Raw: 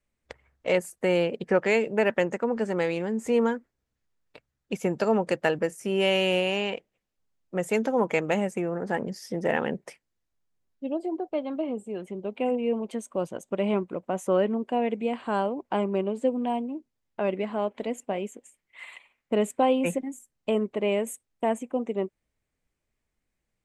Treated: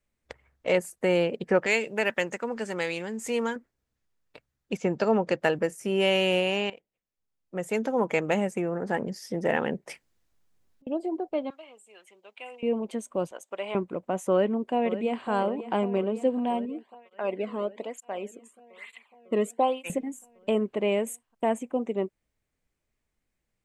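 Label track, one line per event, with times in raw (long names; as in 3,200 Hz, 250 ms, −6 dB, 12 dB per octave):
1.660000	3.560000	tilt shelving filter lows −6.5 dB, about 1,500 Hz
4.770000	5.410000	low-pass filter 6,600 Hz 24 dB per octave
6.700000	8.280000	fade in, from −15 dB
9.860000	10.870000	compressor whose output falls as the input rises −44 dBFS, ratio −0.5
11.500000	12.630000	Bessel high-pass filter 1,800 Hz
13.310000	13.750000	high-pass filter 700 Hz
14.300000	15.290000	delay throw 550 ms, feedback 75%, level −13 dB
16.650000	19.900000	through-zero flanger with one copy inverted nulls at 1.1 Hz, depth 1.4 ms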